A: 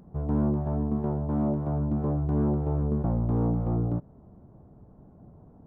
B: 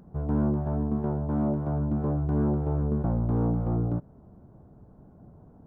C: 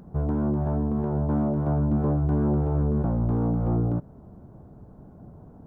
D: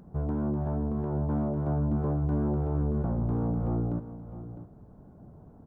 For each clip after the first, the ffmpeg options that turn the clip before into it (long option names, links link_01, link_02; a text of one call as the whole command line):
ffmpeg -i in.wav -af "equalizer=frequency=1500:width_type=o:width=0.25:gain=5" out.wav
ffmpeg -i in.wav -af "alimiter=limit=-22.5dB:level=0:latency=1:release=17,volume=5dB" out.wav
ffmpeg -i in.wav -af "aecho=1:1:656:0.211,volume=-4.5dB" out.wav